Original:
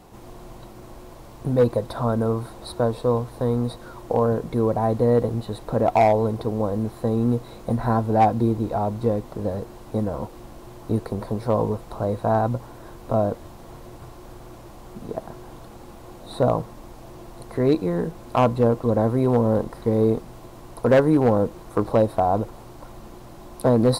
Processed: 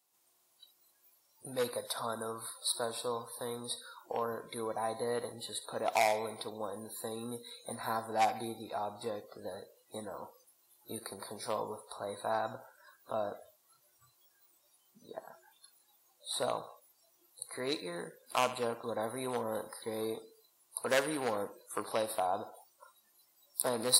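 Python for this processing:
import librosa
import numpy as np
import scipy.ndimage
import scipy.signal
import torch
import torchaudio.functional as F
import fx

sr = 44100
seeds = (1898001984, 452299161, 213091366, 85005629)

y = np.diff(x, prepend=0.0)
y = fx.echo_thinned(y, sr, ms=70, feedback_pct=57, hz=280.0, wet_db=-13.5)
y = fx.noise_reduce_blind(y, sr, reduce_db=23)
y = y * 10.0 ** (7.5 / 20.0)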